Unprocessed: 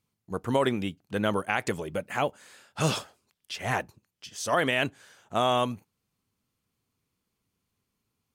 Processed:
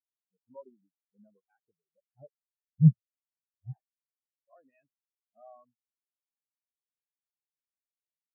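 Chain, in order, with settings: coarse spectral quantiser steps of 15 dB; 2.11–3.73 s: tilt EQ -3 dB/octave; spectral contrast expander 4:1

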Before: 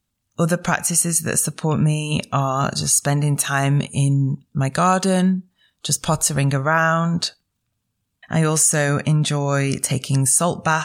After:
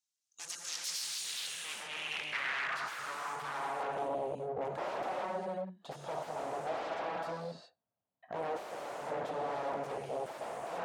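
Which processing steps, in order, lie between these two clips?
gated-style reverb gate 430 ms flat, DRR 0.5 dB; wavefolder -20 dBFS; band-pass sweep 6 kHz -> 660 Hz, 0.64–4.16 s; trim -3.5 dB

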